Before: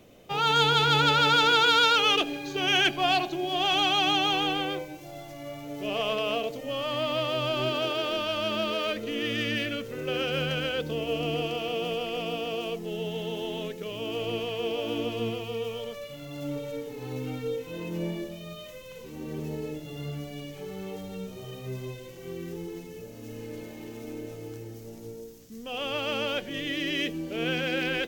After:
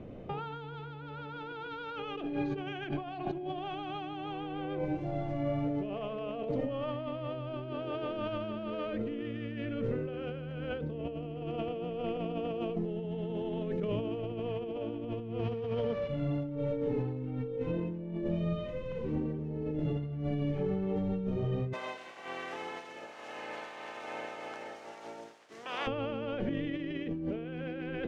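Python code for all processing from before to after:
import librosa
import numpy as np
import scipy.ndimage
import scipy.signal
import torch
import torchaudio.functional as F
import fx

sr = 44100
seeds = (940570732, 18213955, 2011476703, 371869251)

y = fx.chain(x, sr, fx.cvsd(bps=32000),
    fx.highpass(hz=45.0, slope=12), at=(15.39, 16.08))
y = fx.spec_clip(y, sr, under_db=25, at=(21.72, 25.86), fade=0.02)
y = fx.highpass(y, sr, hz=660.0, slope=12, at=(21.72, 25.86), fade=0.02)
y = fx.peak_eq(y, sr, hz=9200.0, db=6.5, octaves=0.73, at=(21.72, 25.86), fade=0.02)
y = scipy.signal.sosfilt(scipy.signal.butter(2, 1900.0, 'lowpass', fs=sr, output='sos'), y)
y = fx.low_shelf(y, sr, hz=420.0, db=11.0)
y = fx.over_compress(y, sr, threshold_db=-32.0, ratio=-1.0)
y = y * librosa.db_to_amplitude(-4.0)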